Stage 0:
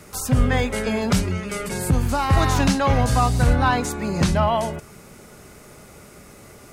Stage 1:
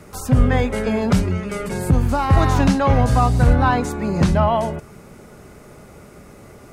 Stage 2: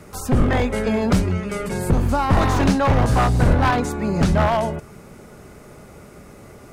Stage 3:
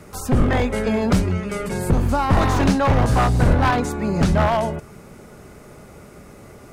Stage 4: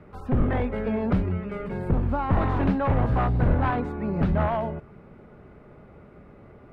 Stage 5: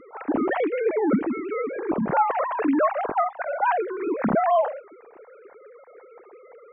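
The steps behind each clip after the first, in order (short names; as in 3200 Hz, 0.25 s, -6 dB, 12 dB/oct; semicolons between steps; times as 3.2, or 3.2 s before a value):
high shelf 2000 Hz -9 dB; gain +3.5 dB
one-sided fold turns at -12.5 dBFS
nothing audible
air absorption 490 m; gain -5 dB
sine-wave speech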